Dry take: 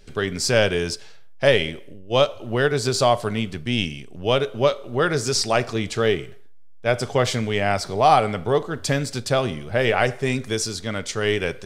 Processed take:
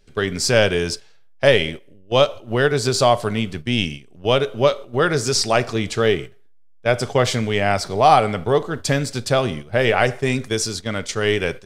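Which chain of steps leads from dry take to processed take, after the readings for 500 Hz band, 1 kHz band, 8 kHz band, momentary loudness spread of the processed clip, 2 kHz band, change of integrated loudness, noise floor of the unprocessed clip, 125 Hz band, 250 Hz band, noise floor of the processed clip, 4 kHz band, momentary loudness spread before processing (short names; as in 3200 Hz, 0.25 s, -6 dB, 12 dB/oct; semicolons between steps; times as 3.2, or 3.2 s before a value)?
+2.5 dB, +2.5 dB, +2.5 dB, 8 LU, +2.5 dB, +2.5 dB, -39 dBFS, +2.5 dB, +2.5 dB, -46 dBFS, +2.5 dB, 8 LU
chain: gate -31 dBFS, range -10 dB; gain +2.5 dB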